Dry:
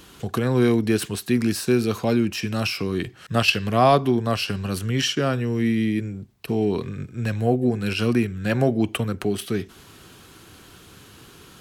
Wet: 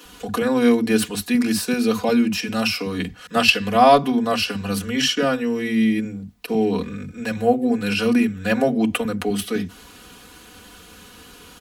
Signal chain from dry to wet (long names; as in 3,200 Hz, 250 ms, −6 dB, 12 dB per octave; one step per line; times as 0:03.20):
comb filter 4.1 ms, depth 98%
multiband delay without the direct sound highs, lows 50 ms, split 230 Hz
level +1 dB